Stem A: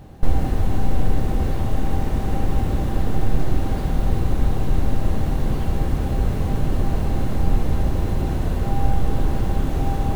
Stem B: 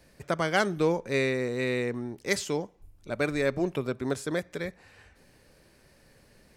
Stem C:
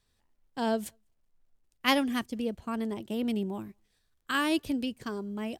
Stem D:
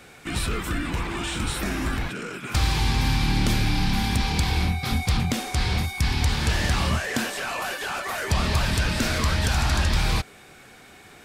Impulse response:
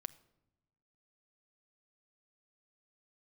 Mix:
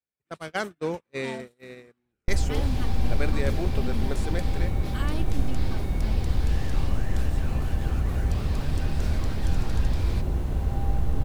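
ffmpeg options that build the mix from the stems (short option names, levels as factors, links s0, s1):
-filter_complex "[0:a]equalizer=f=62:w=1.2:g=7,adelay=2050,volume=0.335,asplit=2[s0][s1];[s1]volume=0.562[s2];[1:a]highpass=49,volume=0.631,asplit=2[s3][s4];[s4]volume=0.0944[s5];[2:a]aecho=1:1:3.4:0.66,alimiter=limit=0.119:level=0:latency=1,adelay=650,volume=0.355[s6];[3:a]highpass=130,volume=0.158[s7];[s2][s5]amix=inputs=2:normalize=0,aecho=0:1:267:1[s8];[s0][s3][s6][s7][s8]amix=inputs=5:normalize=0,agate=range=0.0112:threshold=0.0355:ratio=16:detection=peak"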